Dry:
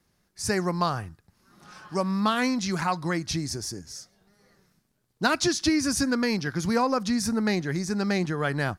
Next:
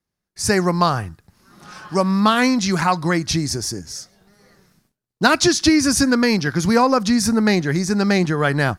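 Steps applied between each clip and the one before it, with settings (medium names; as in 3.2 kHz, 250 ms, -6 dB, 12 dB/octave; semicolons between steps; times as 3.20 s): gate with hold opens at -57 dBFS; trim +8.5 dB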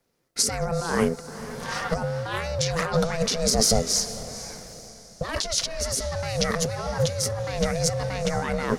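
ring modulator 330 Hz; compressor with a negative ratio -30 dBFS, ratio -1; echo that smears into a reverb 453 ms, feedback 45%, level -14 dB; trim +3.5 dB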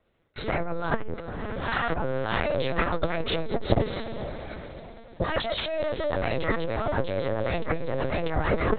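LPC vocoder at 8 kHz pitch kept; transformer saturation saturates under 160 Hz; trim +4 dB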